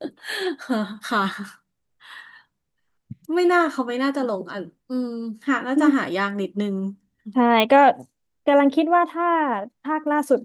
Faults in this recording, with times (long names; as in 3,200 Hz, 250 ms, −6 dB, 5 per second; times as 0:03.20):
0:07.60: click −6 dBFS